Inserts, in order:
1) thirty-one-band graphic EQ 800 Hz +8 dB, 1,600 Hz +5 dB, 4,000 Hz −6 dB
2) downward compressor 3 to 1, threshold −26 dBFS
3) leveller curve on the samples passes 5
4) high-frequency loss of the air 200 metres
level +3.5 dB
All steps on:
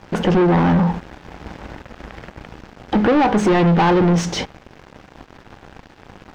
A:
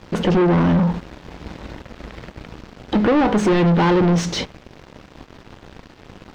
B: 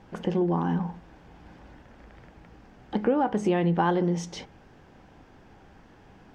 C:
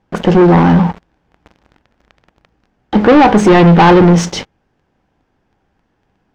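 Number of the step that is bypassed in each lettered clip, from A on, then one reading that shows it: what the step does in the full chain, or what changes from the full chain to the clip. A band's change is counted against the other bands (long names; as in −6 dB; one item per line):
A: 1, 1 kHz band −3.0 dB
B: 3, change in crest factor +10.0 dB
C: 2, change in momentary loudness spread −5 LU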